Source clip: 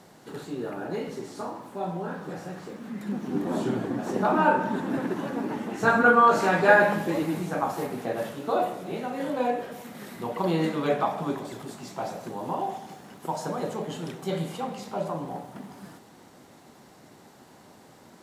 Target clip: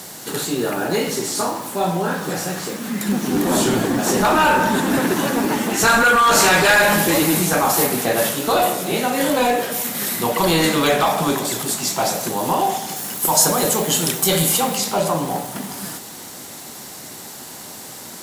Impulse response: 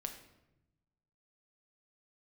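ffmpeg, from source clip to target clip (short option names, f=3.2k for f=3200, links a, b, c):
-filter_complex "[0:a]asettb=1/sr,asplit=3[a][b][c];[a]atrim=end=12.964[d];[b]atrim=start=12.96:end=14.78,asetpts=PTS-STARTPTS,afade=t=in:d=0.004:c=qsin,afade=t=out:st=1.816:d=0.004:c=qsin,highshelf=f=9.4k:g=9.5[e];[c]atrim=start=14.776[f];[d][e]acrossfade=d=0.004:c1=hsin:c2=qsin[g];[g][f]acrossfade=d=0.004:c1=qsin:c2=hsin,apsyclip=23.5dB,crystalizer=i=5.5:c=0,volume=-13dB"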